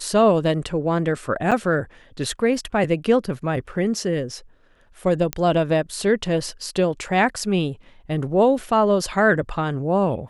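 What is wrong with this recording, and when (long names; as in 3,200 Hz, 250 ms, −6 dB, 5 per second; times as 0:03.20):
0:01.51–0:01.52: drop-out 6.7 ms
0:05.33: click −8 dBFS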